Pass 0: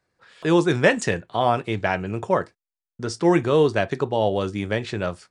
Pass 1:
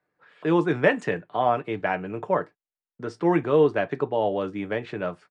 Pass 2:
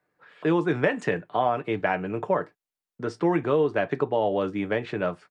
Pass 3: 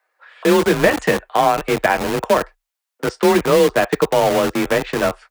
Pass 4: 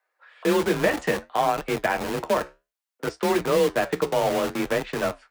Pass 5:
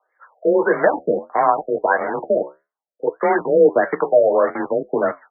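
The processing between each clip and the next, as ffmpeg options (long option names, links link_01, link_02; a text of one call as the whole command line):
ffmpeg -i in.wav -filter_complex "[0:a]acrossover=split=150 2800:gain=0.224 1 0.126[link_01][link_02][link_03];[link_01][link_02][link_03]amix=inputs=3:normalize=0,aecho=1:1:6.7:0.33,volume=-2.5dB" out.wav
ffmpeg -i in.wav -af "acompressor=threshold=-21dB:ratio=6,volume=2.5dB" out.wav
ffmpeg -i in.wav -filter_complex "[0:a]acrossover=split=520|2300[link_01][link_02][link_03];[link_01]acrusher=bits=4:mix=0:aa=0.000001[link_04];[link_04][link_02][link_03]amix=inputs=3:normalize=0,afreqshift=29,volume=8.5dB" out.wav
ffmpeg -i in.wav -af "flanger=delay=6.6:depth=8.7:regen=-70:speed=0.61:shape=triangular,volume=-3dB" out.wav
ffmpeg -i in.wav -af "aphaser=in_gain=1:out_gain=1:delay=2.2:decay=0.45:speed=0.81:type=triangular,highpass=350,lowpass=5900,afftfilt=real='re*lt(b*sr/1024,680*pow(2300/680,0.5+0.5*sin(2*PI*1.6*pts/sr)))':imag='im*lt(b*sr/1024,680*pow(2300/680,0.5+0.5*sin(2*PI*1.6*pts/sr)))':win_size=1024:overlap=0.75,volume=8dB" out.wav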